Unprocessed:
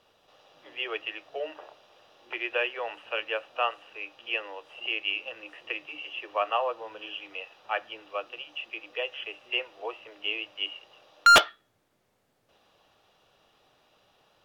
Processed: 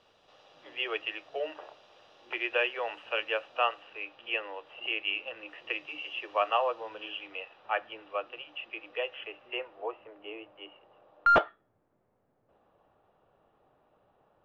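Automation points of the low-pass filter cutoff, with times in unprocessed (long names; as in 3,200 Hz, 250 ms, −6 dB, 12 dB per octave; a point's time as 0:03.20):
0:03.39 6,600 Hz
0:04.19 3,100 Hz
0:05.36 3,100 Hz
0:05.90 6,700 Hz
0:06.60 6,700 Hz
0:07.57 2,600 Hz
0:09.03 2,600 Hz
0:10.26 1,100 Hz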